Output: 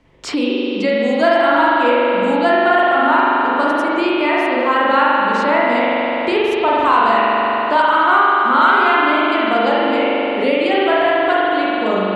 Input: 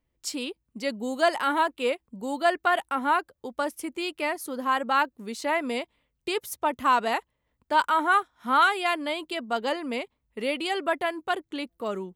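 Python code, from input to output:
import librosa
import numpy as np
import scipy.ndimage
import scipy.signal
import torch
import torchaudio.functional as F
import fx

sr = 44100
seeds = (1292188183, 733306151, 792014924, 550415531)

y = fx.air_absorb(x, sr, metres=100.0)
y = fx.rev_spring(y, sr, rt60_s=2.6, pass_ms=(41,), chirp_ms=35, drr_db=-7.5)
y = fx.band_squash(y, sr, depth_pct=70)
y = F.gain(torch.from_numpy(y), 4.0).numpy()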